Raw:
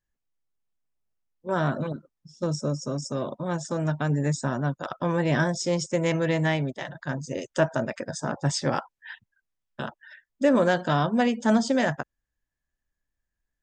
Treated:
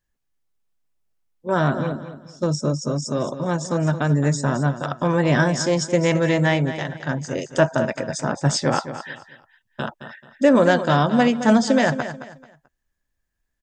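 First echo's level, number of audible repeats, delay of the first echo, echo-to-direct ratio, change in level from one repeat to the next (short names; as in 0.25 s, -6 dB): -11.5 dB, 3, 0.218 s, -11.0 dB, -10.5 dB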